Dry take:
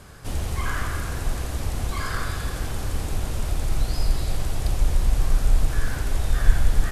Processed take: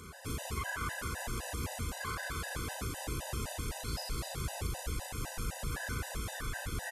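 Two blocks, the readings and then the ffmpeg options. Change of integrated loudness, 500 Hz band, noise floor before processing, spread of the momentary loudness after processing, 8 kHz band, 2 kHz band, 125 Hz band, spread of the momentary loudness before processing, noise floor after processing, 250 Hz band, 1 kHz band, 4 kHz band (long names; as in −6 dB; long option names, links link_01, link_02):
−11.0 dB, −7.5 dB, −31 dBFS, 2 LU, −4.5 dB, −5.5 dB, −13.0 dB, 6 LU, −45 dBFS, −8.5 dB, −6.5 dB, −6.0 dB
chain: -filter_complex "[0:a]highpass=55,equalizer=frequency=4200:width_type=o:width=0.77:gain=-2.5,acrossover=split=1000[link_01][link_02];[link_01]asoftclip=type=tanh:threshold=-26dB[link_03];[link_03][link_02]amix=inputs=2:normalize=0,alimiter=level_in=2dB:limit=-24dB:level=0:latency=1:release=112,volume=-2dB,lowshelf=frequency=260:gain=-4.5,acompressor=mode=upward:threshold=-51dB:ratio=2.5,asplit=2[link_04][link_05];[link_05]adelay=36,volume=-3dB[link_06];[link_04][link_06]amix=inputs=2:normalize=0,afftfilt=real='re*gt(sin(2*PI*3.9*pts/sr)*(1-2*mod(floor(b*sr/1024/510),2)),0)':imag='im*gt(sin(2*PI*3.9*pts/sr)*(1-2*mod(floor(b*sr/1024/510),2)),0)':win_size=1024:overlap=0.75"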